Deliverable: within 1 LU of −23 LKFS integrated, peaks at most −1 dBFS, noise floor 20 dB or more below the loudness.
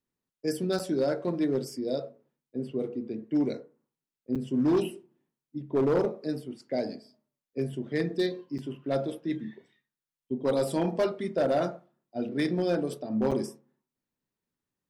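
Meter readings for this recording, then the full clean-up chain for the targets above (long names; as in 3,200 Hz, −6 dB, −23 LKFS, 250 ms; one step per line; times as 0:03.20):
share of clipped samples 0.9%; peaks flattened at −19.5 dBFS; number of dropouts 4; longest dropout 6.8 ms; integrated loudness −30.0 LKFS; sample peak −19.5 dBFS; target loudness −23.0 LKFS
→ clipped peaks rebuilt −19.5 dBFS
repair the gap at 0:00.79/0:04.35/0:08.58/0:13.31, 6.8 ms
level +7 dB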